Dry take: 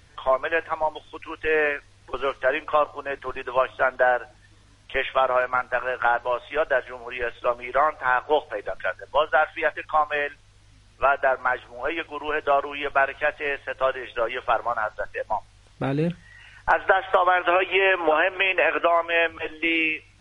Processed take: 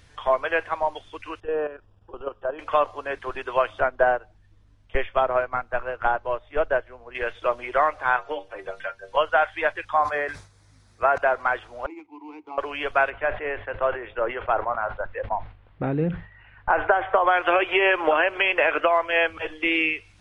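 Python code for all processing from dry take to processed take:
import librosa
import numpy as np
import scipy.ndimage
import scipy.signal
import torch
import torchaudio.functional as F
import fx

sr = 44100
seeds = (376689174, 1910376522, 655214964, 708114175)

y = fx.chain(x, sr, fx.level_steps(step_db=11),
    fx.moving_average(points=21), at=(1.4, 2.59))
y = fx.chain(y, sr, fx.tilt_eq(slope=-2.5),
    fx.upward_expand(threshold_db=-37.0, expansion=1.5), at=(3.8, 7.15))
y = fx.chain(y, sr, fx.stiff_resonator(f0_hz=70.0, decay_s=0.24, stiffness=0.008),
    fx.band_squash(depth_pct=100), at=(8.16, 9.17))
y = fx.chain(y, sr, fx.highpass(hz=57.0, slope=12),
    fx.peak_eq(hz=2900.0, db=-14.0, octaves=0.4),
    fx.sustainer(db_per_s=120.0), at=(9.93, 11.18))
y = fx.chain(y, sr, fx.median_filter(points=15),
    fx.vowel_filter(vowel='u'), at=(11.86, 12.58))
y = fx.chain(y, sr, fx.gaussian_blur(sigma=3.6),
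    fx.sustainer(db_per_s=130.0), at=(13.1, 17.27))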